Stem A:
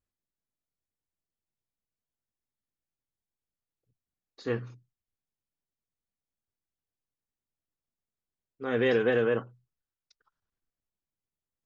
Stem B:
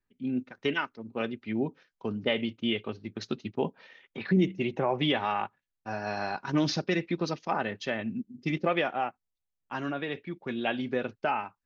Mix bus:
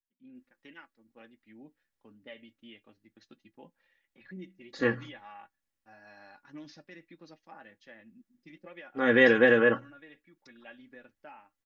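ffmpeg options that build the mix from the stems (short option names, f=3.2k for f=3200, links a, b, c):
-filter_complex "[0:a]adelay=350,volume=2.5dB[a];[1:a]flanger=delay=5.4:depth=1.6:regen=60:speed=0.23:shape=triangular,volume=-19dB[b];[a][b]amix=inputs=2:normalize=0,equalizer=f=1.8k:t=o:w=0.45:g=8,aecho=1:1:3.6:0.53"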